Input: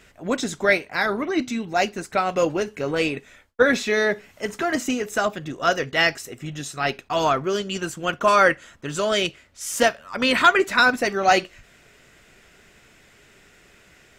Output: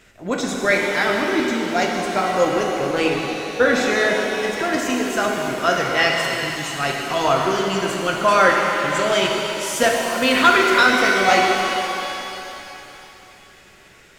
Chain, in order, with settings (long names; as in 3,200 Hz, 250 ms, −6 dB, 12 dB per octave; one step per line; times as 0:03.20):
0:00.75–0:02.49: notch filter 2,600 Hz, Q 8.6
reverb with rising layers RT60 3.2 s, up +7 semitones, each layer −8 dB, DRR −0.5 dB